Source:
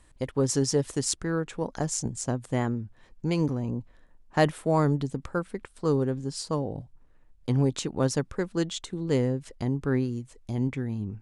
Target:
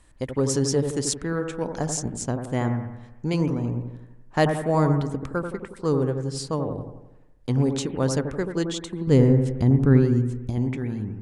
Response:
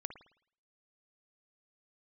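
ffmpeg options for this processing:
-filter_complex "[0:a]asettb=1/sr,asplit=3[link_01][link_02][link_03];[link_01]atrim=end=9.074[link_04];[link_02]atrim=start=9.07:end=10.5,asetpts=PTS-STARTPTS,afade=type=in:duration=0.004:curve=qsin,afade=type=out:start_time=1.426:duration=0.004:curve=qsin,lowshelf=frequency=310:gain=11[link_05];[link_03]atrim=start=10.496[link_06];[link_04][link_05]acrossfade=duration=0.004:curve1=hsin:curve2=qsin[link_07];[link_07][link_06]acrossfade=duration=0.004:curve1=qsin:curve2=hsin[link_08];[1:a]atrim=start_sample=2205,asetrate=28224,aresample=44100[link_09];[link_08][link_09]afir=irnorm=-1:irlink=0,volume=2.5dB"

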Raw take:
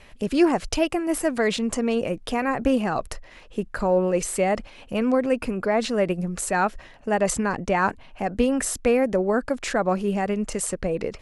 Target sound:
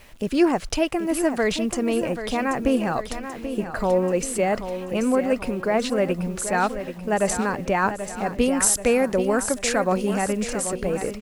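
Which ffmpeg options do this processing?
ffmpeg -i in.wav -filter_complex "[0:a]asettb=1/sr,asplit=3[link_01][link_02][link_03];[link_01]atrim=end=8.414[link_04];[link_02]atrim=start=8.41:end=10.28,asetpts=PTS-STARTPTS,afade=type=in:duration=0.004:curve=qsin,afade=type=out:start_time=1.866:duration=0.004:curve=qsin,highshelf=frequency=3800:gain=10.5[link_05];[link_03]atrim=start=10.276[link_06];[link_04][link_05]acrossfade=duration=0.004:curve1=hsin:curve2=qsin[link_07];[link_07][link_06]acrossfade=duration=0.004:curve1=qsin:curve2=hsin,acrusher=bits=8:mix=0:aa=0.000001,aecho=1:1:784|1568|2352|3136|3920|4704:0.316|0.161|0.0823|0.0419|0.0214|0.0109" out.wav

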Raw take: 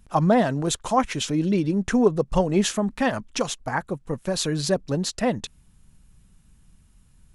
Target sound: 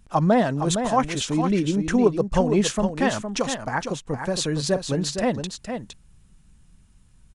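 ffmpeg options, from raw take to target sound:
ffmpeg -i in.wav -filter_complex "[0:a]asplit=2[link_01][link_02];[link_02]aecho=0:1:462:0.422[link_03];[link_01][link_03]amix=inputs=2:normalize=0,aresample=22050,aresample=44100" out.wav

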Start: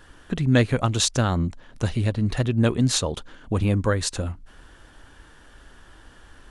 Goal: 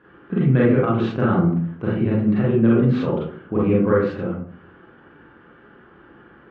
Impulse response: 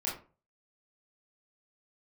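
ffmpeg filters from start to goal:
-filter_complex "[0:a]highpass=170,equalizer=frequency=170:width_type=q:width=4:gain=7,equalizer=frequency=370:width_type=q:width=4:gain=5,equalizer=frequency=620:width_type=q:width=4:gain=-6,equalizer=frequency=890:width_type=q:width=4:gain=-6,equalizer=frequency=1800:width_type=q:width=4:gain=-5,lowpass=frequency=2100:width=0.5412,lowpass=frequency=2100:width=1.3066[link_01];[1:a]atrim=start_sample=2205,asetrate=26901,aresample=44100[link_02];[link_01][link_02]afir=irnorm=-1:irlink=0,alimiter=level_in=5dB:limit=-1dB:release=50:level=0:latency=1,volume=-6.5dB"

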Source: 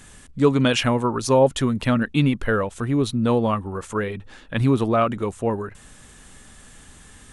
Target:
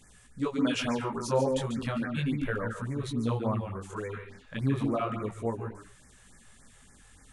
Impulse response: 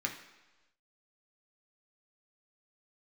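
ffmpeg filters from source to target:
-filter_complex "[0:a]flanger=delay=16:depth=7:speed=0.34,asplit=2[link_01][link_02];[1:a]atrim=start_sample=2205,afade=type=out:start_time=0.19:duration=0.01,atrim=end_sample=8820,adelay=142[link_03];[link_02][link_03]afir=irnorm=-1:irlink=0,volume=-8.5dB[link_04];[link_01][link_04]amix=inputs=2:normalize=0,afftfilt=real='re*(1-between(b*sr/1024,220*pow(3500/220,0.5+0.5*sin(2*PI*3.5*pts/sr))/1.41,220*pow(3500/220,0.5+0.5*sin(2*PI*3.5*pts/sr))*1.41))':imag='im*(1-between(b*sr/1024,220*pow(3500/220,0.5+0.5*sin(2*PI*3.5*pts/sr))/1.41,220*pow(3500/220,0.5+0.5*sin(2*PI*3.5*pts/sr))*1.41))':win_size=1024:overlap=0.75,volume=-7.5dB"

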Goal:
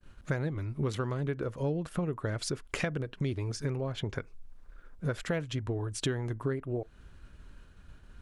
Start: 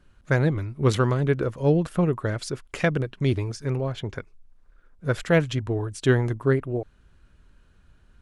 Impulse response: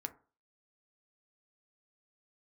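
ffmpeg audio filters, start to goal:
-filter_complex "[0:a]agate=range=-33dB:threshold=-53dB:ratio=3:detection=peak,acompressor=threshold=-35dB:ratio=6,asplit=2[link_01][link_02];[1:a]atrim=start_sample=2205,atrim=end_sample=3528[link_03];[link_02][link_03]afir=irnorm=-1:irlink=0,volume=-13.5dB[link_04];[link_01][link_04]amix=inputs=2:normalize=0,volume=3.5dB"

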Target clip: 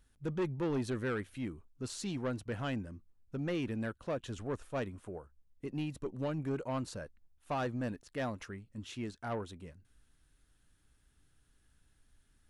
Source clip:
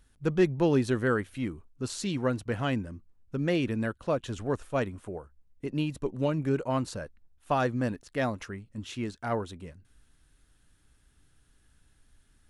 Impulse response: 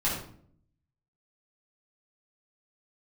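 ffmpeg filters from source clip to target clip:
-af "asoftclip=type=tanh:threshold=-23dB,volume=-5.5dB"

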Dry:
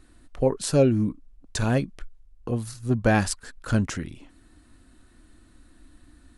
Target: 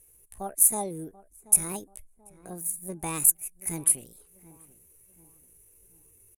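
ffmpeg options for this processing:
ffmpeg -i in.wav -filter_complex "[0:a]aexciter=amount=9.4:drive=5.8:freq=4900,lowpass=frequency=6700:width_type=q:width=7.1,asetrate=66075,aresample=44100,atempo=0.66742,asplit=2[link_01][link_02];[link_02]adelay=734,lowpass=frequency=1300:poles=1,volume=-18dB,asplit=2[link_03][link_04];[link_04]adelay=734,lowpass=frequency=1300:poles=1,volume=0.44,asplit=2[link_05][link_06];[link_06]adelay=734,lowpass=frequency=1300:poles=1,volume=0.44,asplit=2[link_07][link_08];[link_08]adelay=734,lowpass=frequency=1300:poles=1,volume=0.44[link_09];[link_03][link_05][link_07][link_09]amix=inputs=4:normalize=0[link_10];[link_01][link_10]amix=inputs=2:normalize=0,volume=-14.5dB" out.wav

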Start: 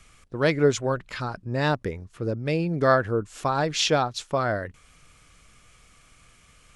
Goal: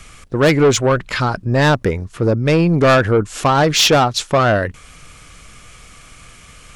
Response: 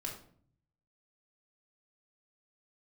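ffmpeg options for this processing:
-af "acontrast=78,asoftclip=type=tanh:threshold=-14dB,volume=7dB"

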